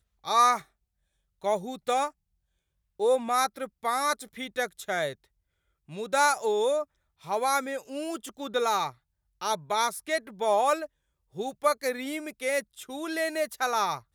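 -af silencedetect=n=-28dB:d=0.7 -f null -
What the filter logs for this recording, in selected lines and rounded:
silence_start: 0.57
silence_end: 1.45 | silence_duration: 0.87
silence_start: 2.07
silence_end: 3.01 | silence_duration: 0.94
silence_start: 5.10
silence_end: 5.98 | silence_duration: 0.88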